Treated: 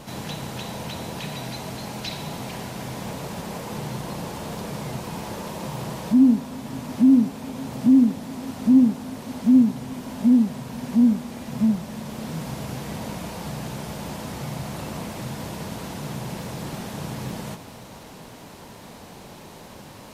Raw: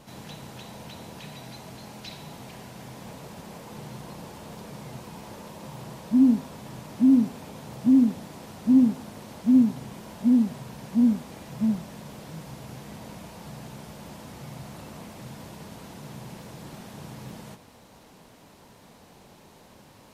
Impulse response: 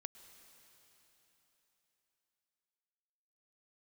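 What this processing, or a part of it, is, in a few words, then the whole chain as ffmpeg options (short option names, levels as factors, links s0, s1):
ducked reverb: -filter_complex "[0:a]asplit=3[s0][s1][s2];[1:a]atrim=start_sample=2205[s3];[s1][s3]afir=irnorm=-1:irlink=0[s4];[s2]apad=whole_len=888061[s5];[s4][s5]sidechaincompress=threshold=0.02:ratio=3:attack=16:release=771,volume=3.55[s6];[s0][s6]amix=inputs=2:normalize=0"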